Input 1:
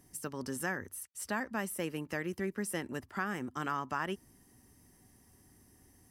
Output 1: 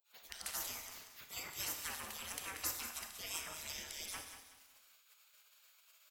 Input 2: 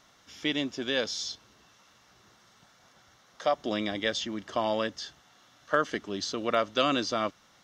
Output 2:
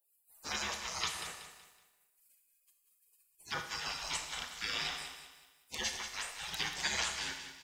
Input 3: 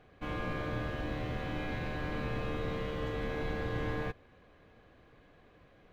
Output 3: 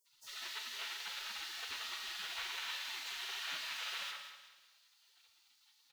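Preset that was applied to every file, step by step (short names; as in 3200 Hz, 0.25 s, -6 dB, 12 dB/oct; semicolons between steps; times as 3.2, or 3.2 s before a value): bands offset in time highs, lows 60 ms, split 1400 Hz; spectral gate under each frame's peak -30 dB weak; on a send: feedback echo 0.187 s, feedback 37%, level -10 dB; on the sum: Schroeder reverb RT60 0.93 s, combs from 26 ms, DRR 6 dB; gain +14 dB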